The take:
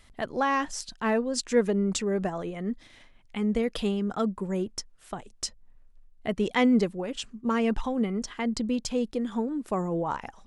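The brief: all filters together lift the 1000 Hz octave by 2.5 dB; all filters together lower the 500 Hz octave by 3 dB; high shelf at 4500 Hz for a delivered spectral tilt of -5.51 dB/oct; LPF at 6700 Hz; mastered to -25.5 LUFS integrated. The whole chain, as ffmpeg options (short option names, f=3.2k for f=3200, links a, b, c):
-af "lowpass=6.7k,equalizer=f=500:t=o:g=-4.5,equalizer=f=1k:t=o:g=4.5,highshelf=f=4.5k:g=-3.5,volume=3.5dB"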